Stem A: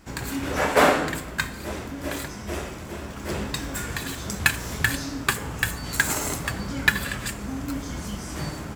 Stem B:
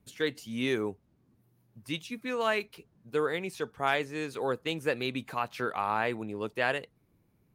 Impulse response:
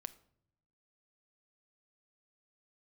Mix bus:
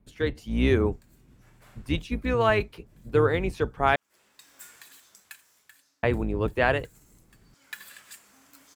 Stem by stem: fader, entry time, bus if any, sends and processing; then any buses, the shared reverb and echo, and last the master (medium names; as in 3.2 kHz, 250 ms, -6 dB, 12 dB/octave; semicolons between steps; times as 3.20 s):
-7.5 dB, 0.85 s, no send, differentiator; auto duck -20 dB, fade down 1.30 s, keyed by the second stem
+3.0 dB, 0.00 s, muted 3.96–6.03 s, no send, octave divider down 2 oct, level +1 dB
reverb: none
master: treble shelf 3 kHz -11.5 dB; level rider gain up to 4.5 dB